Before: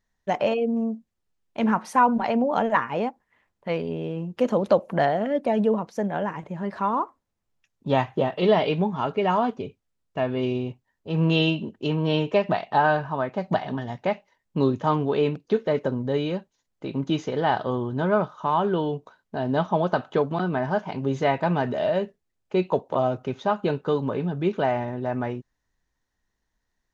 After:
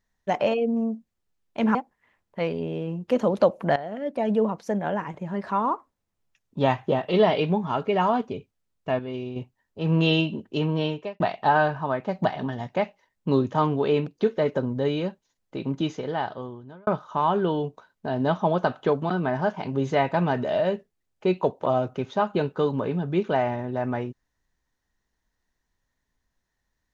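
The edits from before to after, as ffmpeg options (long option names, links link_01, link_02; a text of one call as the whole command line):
ffmpeg -i in.wav -filter_complex "[0:a]asplit=7[link_01][link_02][link_03][link_04][link_05][link_06][link_07];[link_01]atrim=end=1.752[link_08];[link_02]atrim=start=3.038:end=5.05,asetpts=PTS-STARTPTS,afade=type=out:start_time=2.008:duration=0.004:curve=hsin:silence=0.199526[link_09];[link_03]atrim=start=5.05:end=10.282,asetpts=PTS-STARTPTS,afade=type=in:duration=0.69:silence=0.199526[link_10];[link_04]atrim=start=10.278:end=10.652,asetpts=PTS-STARTPTS,volume=-7dB[link_11];[link_05]atrim=start=10.648:end=12.49,asetpts=PTS-STARTPTS,afade=type=out:start_time=1.332:duration=0.51[link_12];[link_06]atrim=start=12.49:end=18.16,asetpts=PTS-STARTPTS,afade=type=in:duration=0.004:curve=hsin,afade=type=out:start_time=4.4:duration=1.27[link_13];[link_07]atrim=start=18.16,asetpts=PTS-STARTPTS,afade=type=in:duration=0.004:curve=hsin[link_14];[link_09][link_10]concat=n=2:v=0:a=1[link_15];[link_08][link_15]acrossfade=duration=0.004:curve1=hsin:curve2=hsin[link_16];[link_16][link_11]acrossfade=duration=0.004:curve1=hsin:curve2=hsin[link_17];[link_12][link_13][link_14]concat=n=3:v=0:a=1[link_18];[link_17][link_18]acrossfade=duration=0.004:curve1=hsin:curve2=hsin" out.wav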